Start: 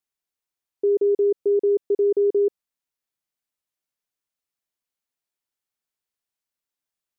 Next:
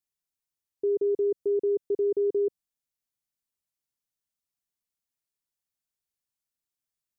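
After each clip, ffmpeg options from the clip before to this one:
-af "bass=f=250:g=8,treble=f=4k:g=6,volume=-7dB"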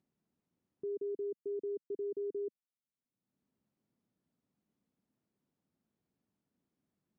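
-af "acompressor=mode=upward:threshold=-36dB:ratio=2.5,bandpass=f=220:t=q:w=1.8:csg=0,volume=-4.5dB"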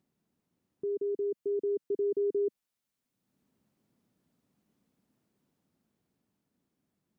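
-af "dynaudnorm=f=250:g=13:m=4dB,volume=5dB"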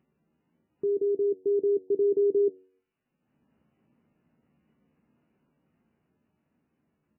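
-filter_complex "[0:a]asplit=2[a][b];[b]adelay=13,volume=-13dB[c];[a][c]amix=inputs=2:normalize=0,bandreject=f=93.74:t=h:w=4,bandreject=f=187.48:t=h:w=4,bandreject=f=281.22:t=h:w=4,bandreject=f=374.96:t=h:w=4,bandreject=f=468.7:t=h:w=4,bandreject=f=562.44:t=h:w=4,bandreject=f=656.18:t=h:w=4,bandreject=f=749.92:t=h:w=4,volume=6.5dB" -ar 8000 -c:a libmp3lame -b:a 8k

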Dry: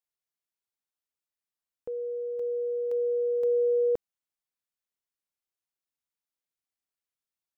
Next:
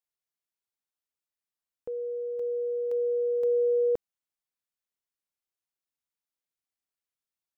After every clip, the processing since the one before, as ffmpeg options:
-af anull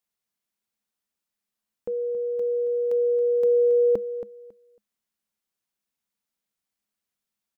-af "equalizer=f=210:t=o:w=0.24:g=13.5,aecho=1:1:275|550|825:0.251|0.0502|0.01,volume=5.5dB"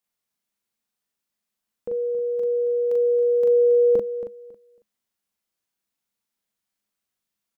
-filter_complex "[0:a]asplit=2[a][b];[b]adelay=40,volume=-2dB[c];[a][c]amix=inputs=2:normalize=0"

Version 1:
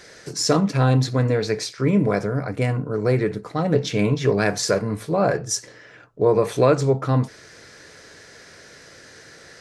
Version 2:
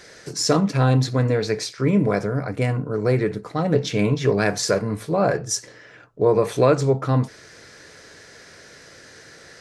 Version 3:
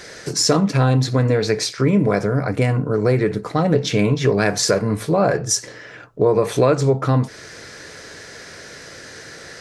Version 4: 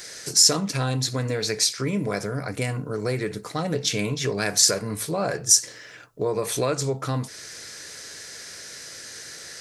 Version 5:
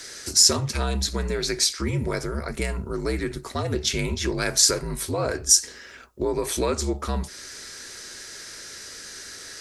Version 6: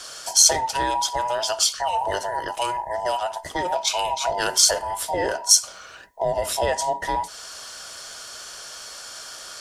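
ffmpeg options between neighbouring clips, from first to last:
-af anull
-af "acompressor=threshold=-24dB:ratio=2,volume=7.5dB"
-af "crystalizer=i=5:c=0,volume=-10dB"
-af "afreqshift=-61"
-af "afftfilt=real='real(if(between(b,1,1008),(2*floor((b-1)/48)+1)*48-b,b),0)':imag='imag(if(between(b,1,1008),(2*floor((b-1)/48)+1)*48-b,b),0)*if(between(b,1,1008),-1,1)':win_size=2048:overlap=0.75,volume=1.5dB"

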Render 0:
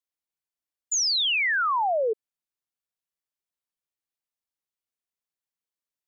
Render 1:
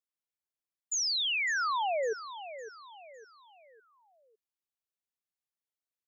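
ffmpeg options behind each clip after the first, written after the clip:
-af "aecho=1:1:556|1112|1668|2224:0.224|0.0895|0.0358|0.0143,volume=-6.5dB"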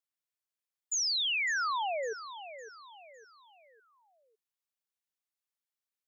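-af "lowshelf=f=410:g=-11"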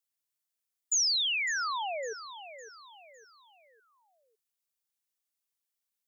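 -af "highshelf=f=4.1k:g=9,volume=-2dB"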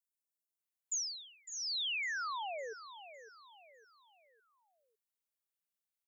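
-filter_complex "[0:a]acrossover=split=260|5300[a][b][c];[a]adelay=510[d];[b]adelay=600[e];[d][e][c]amix=inputs=3:normalize=0,volume=-6dB"

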